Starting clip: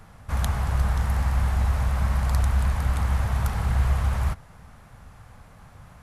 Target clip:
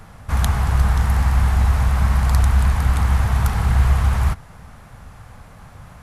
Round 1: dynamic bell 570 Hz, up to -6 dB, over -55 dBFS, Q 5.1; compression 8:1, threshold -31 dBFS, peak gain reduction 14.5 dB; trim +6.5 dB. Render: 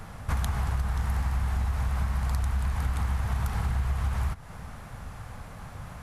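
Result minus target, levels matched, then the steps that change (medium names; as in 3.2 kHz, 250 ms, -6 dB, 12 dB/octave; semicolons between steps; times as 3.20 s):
compression: peak gain reduction +14.5 dB
remove: compression 8:1, threshold -31 dBFS, peak gain reduction 14.5 dB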